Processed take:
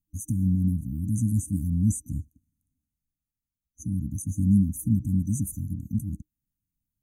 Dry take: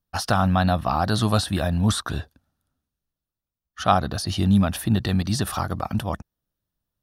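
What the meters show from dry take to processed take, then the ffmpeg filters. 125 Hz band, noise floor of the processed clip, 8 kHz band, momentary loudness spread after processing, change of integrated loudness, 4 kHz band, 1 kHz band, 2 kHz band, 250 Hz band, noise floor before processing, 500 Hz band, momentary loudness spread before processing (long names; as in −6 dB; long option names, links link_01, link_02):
−2.0 dB, below −85 dBFS, −3.0 dB, 14 LU, −4.0 dB, below −40 dB, below −40 dB, below −40 dB, −2.0 dB, below −85 dBFS, below −30 dB, 8 LU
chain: -af "afftfilt=real='re*(1-between(b*sr/4096,310,6000))':imag='im*(1-between(b*sr/4096,310,6000))':win_size=4096:overlap=0.75,volume=-2dB"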